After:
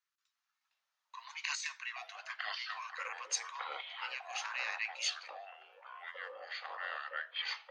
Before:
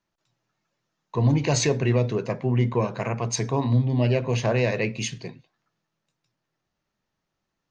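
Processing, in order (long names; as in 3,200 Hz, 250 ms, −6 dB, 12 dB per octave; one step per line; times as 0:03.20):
Butterworth high-pass 1,100 Hz 48 dB per octave
0:01.27–0:01.67: compressor whose output falls as the input rises −32 dBFS, ratio −1
delay with pitch and tempo change per echo 353 ms, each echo −6 semitones, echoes 2
level −6.5 dB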